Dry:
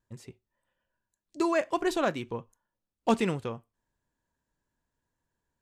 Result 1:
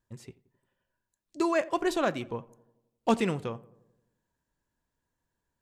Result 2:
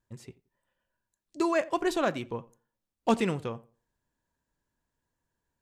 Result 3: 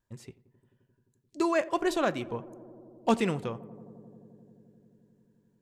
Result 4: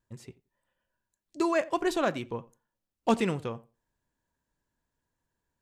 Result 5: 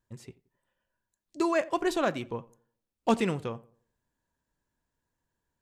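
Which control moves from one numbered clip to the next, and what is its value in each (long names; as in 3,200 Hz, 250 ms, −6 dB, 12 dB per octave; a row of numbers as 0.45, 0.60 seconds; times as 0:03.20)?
feedback echo with a low-pass in the loop, feedback: 60, 25, 90, 16, 37%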